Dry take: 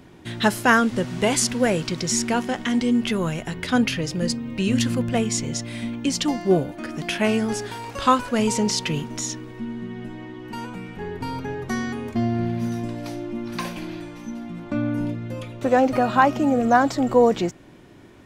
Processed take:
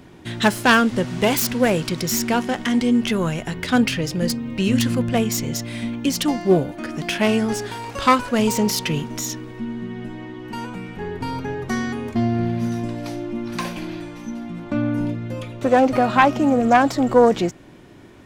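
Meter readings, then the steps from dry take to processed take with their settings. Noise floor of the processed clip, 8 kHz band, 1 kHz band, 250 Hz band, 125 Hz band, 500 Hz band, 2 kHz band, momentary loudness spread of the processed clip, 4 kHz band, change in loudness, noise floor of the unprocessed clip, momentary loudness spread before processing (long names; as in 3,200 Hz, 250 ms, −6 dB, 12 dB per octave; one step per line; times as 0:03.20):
−44 dBFS, −0.5 dB, +2.0 dB, +2.5 dB, +2.5 dB, +2.5 dB, +2.5 dB, 15 LU, +2.0 dB, +2.0 dB, −47 dBFS, 15 LU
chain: phase distortion by the signal itself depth 0.12 ms
level +2.5 dB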